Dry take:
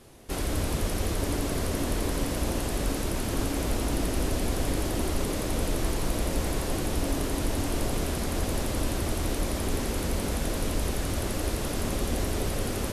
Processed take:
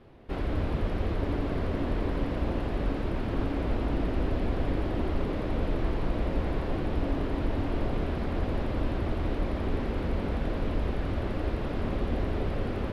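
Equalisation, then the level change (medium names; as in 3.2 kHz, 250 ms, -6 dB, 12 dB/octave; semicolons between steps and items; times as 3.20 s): distance through air 390 m; 0.0 dB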